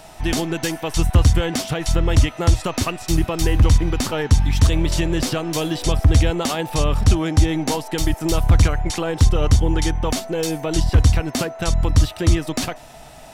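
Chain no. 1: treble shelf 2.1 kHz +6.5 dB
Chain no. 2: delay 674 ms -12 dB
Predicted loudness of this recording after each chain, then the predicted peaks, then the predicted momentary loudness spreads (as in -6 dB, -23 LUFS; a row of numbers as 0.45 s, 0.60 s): -18.5 LUFS, -19.5 LUFS; -4.0 dBFS, -4.0 dBFS; 6 LU, 7 LU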